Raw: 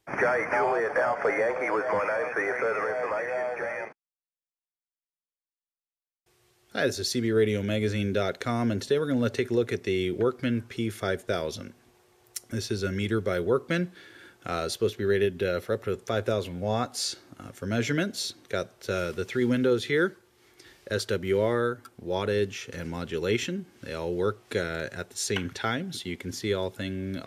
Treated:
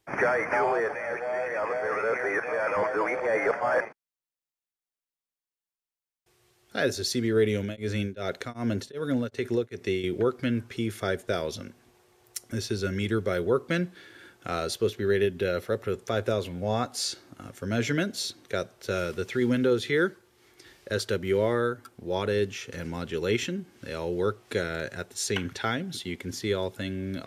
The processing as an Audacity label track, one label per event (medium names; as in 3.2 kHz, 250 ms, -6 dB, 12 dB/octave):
0.950000	3.810000	reverse
7.580000	10.040000	tremolo of two beating tones nulls at 2.6 Hz